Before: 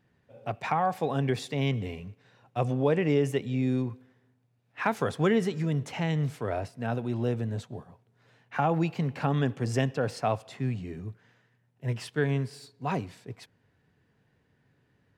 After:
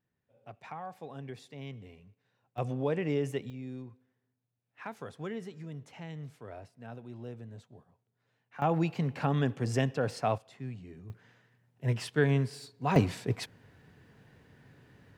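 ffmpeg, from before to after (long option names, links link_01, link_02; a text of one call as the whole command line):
ffmpeg -i in.wav -af "asetnsamples=nb_out_samples=441:pad=0,asendcmd='2.58 volume volume -6dB;3.5 volume volume -14.5dB;8.62 volume volume -2dB;10.38 volume volume -10dB;11.1 volume volume 1dB;12.96 volume volume 10dB',volume=-15.5dB" out.wav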